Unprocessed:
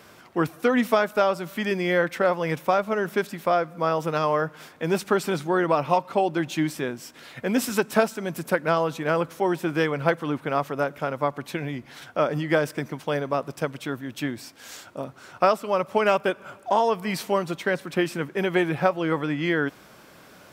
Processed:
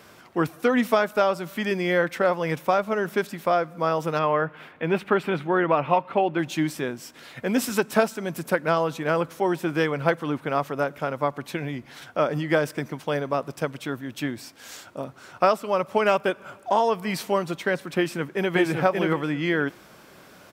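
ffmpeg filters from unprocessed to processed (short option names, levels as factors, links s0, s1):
-filter_complex "[0:a]asettb=1/sr,asplit=3[s0][s1][s2];[s0]atrim=end=4.194[s3];[s1]atrim=start=4.19:end=6.39,asetpts=PTS-STARTPTS,afade=t=in:d=0.004:c=qsin,afade=t=out:st=2.196:d=0.004:c=qsin,highshelf=f=4000:t=q:w=1.5:g=-13.5[s4];[s2]atrim=start=6.386[s5];[s3][s4]acrossfade=d=0.004:c1=hsin:c2=qsin[s6];[s6][s5]acrossfade=d=0.004:c1=qsin:c2=hsin,asplit=2[s7][s8];[s8]afade=t=in:st=17.97:d=0.01,afade=t=out:st=18.55:d=0.01,aecho=0:1:580|1160|1740:0.794328|0.119149|0.0178724[s9];[s7][s9]amix=inputs=2:normalize=0"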